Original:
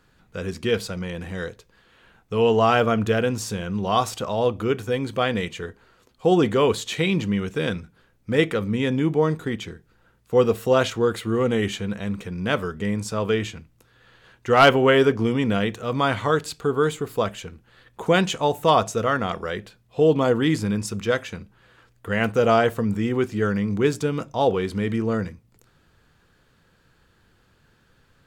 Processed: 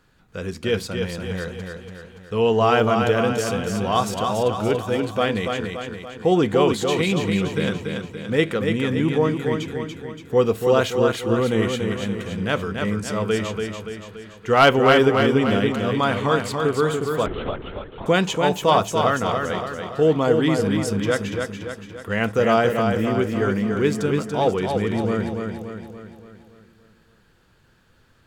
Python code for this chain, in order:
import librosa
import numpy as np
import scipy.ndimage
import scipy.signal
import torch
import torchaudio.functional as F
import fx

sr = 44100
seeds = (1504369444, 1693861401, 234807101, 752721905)

y = fx.echo_feedback(x, sr, ms=286, feedback_pct=52, wet_db=-5.0)
y = fx.lpc_vocoder(y, sr, seeds[0], excitation='whisper', order=10, at=(17.26, 18.06))